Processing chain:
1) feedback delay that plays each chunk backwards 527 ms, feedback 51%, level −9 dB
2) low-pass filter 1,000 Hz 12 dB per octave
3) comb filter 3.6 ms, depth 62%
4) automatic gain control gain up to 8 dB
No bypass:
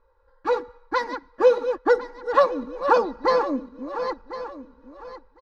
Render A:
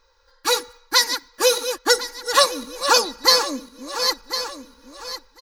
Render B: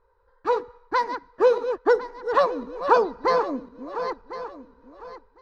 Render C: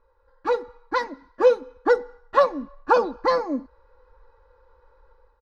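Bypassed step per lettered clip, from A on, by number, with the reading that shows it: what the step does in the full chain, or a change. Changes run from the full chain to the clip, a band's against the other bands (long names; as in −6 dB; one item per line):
2, 4 kHz band +23.5 dB
3, 250 Hz band −2.0 dB
1, change in momentary loudness spread −5 LU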